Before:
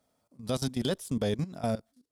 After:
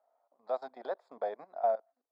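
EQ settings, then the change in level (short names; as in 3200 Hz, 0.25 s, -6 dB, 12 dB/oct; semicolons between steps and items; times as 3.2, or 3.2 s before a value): running mean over 15 samples; ladder high-pass 630 Hz, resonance 60%; air absorption 190 m; +9.0 dB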